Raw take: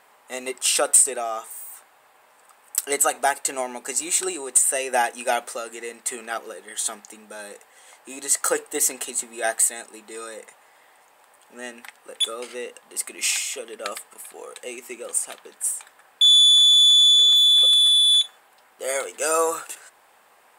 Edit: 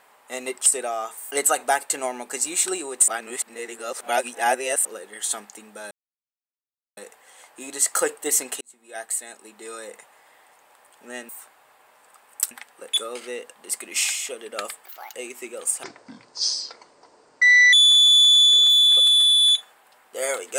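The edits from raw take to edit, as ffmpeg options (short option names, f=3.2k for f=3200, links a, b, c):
-filter_complex "[0:a]asplit=13[a][b][c][d][e][f][g][h][i][j][k][l][m];[a]atrim=end=0.662[n];[b]atrim=start=0.988:end=1.642[o];[c]atrim=start=2.858:end=4.632[p];[d]atrim=start=4.628:end=6.402,asetpts=PTS-STARTPTS,areverse[q];[e]atrim=start=6.398:end=7.46,asetpts=PTS-STARTPTS,afade=t=out:st=1.058:d=0.004:c=hsin,apad=pad_dur=1.06[r];[f]atrim=start=7.46:end=9.1,asetpts=PTS-STARTPTS,afade=t=in:d=0.004:c=hsin,afade=t=out:st=1.636:d=0.004:c=hsin[s];[g]atrim=start=9.1:end=11.782,asetpts=PTS-STARTPTS,afade=t=in:d=1.27[t];[h]atrim=start=1.638:end=2.862[u];[i]atrim=start=11.778:end=14.124[v];[j]atrim=start=14.12:end=14.61,asetpts=PTS-STARTPTS,asetrate=75852,aresample=44100,atrim=end_sample=12563,asetpts=PTS-STARTPTS[w];[k]atrim=start=14.606:end=15.314[x];[l]atrim=start=15.31:end=16.39,asetpts=PTS-STARTPTS,asetrate=25137,aresample=44100[y];[m]atrim=start=16.386[z];[n][o]acrossfade=d=0.004:c1=hsin:c2=hsin[aa];[aa][p]acrossfade=d=0.004:c1=hsin:c2=hsin[ab];[ab][q]acrossfade=d=0.004:c1=hsin:c2=hsin[ac];[r][s][t]concat=n=3:v=0:a=1[ad];[ac][ad]acrossfade=d=0.004:c1=hsin:c2=hsin[ae];[ae][u]acrossfade=d=0.004:c1=hsin:c2=hsin[af];[af][v]acrossfade=d=0.004:c1=hsin:c2=hsin[ag];[ag][w]acrossfade=d=0.004:c1=hsin:c2=hsin[ah];[ah][x]acrossfade=d=0.004:c1=hsin:c2=hsin[ai];[ai][y]acrossfade=d=0.004:c1=hsin:c2=hsin[aj];[aj][z]acrossfade=d=0.004:c1=hsin:c2=hsin"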